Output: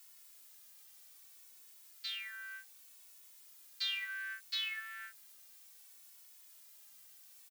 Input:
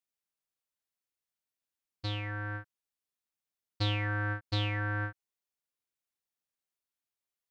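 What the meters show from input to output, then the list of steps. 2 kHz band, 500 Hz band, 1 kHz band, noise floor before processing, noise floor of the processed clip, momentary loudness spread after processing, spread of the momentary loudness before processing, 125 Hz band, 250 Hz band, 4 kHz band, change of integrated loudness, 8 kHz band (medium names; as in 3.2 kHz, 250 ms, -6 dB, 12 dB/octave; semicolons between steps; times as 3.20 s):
-4.5 dB, under -35 dB, -16.5 dB, under -85 dBFS, -59 dBFS, 19 LU, 9 LU, under -40 dB, under -40 dB, +1.0 dB, -5.5 dB, no reading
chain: Bessel high-pass 2.7 kHz, order 8; added noise blue -62 dBFS; endless flanger 2.3 ms -0.65 Hz; trim +6 dB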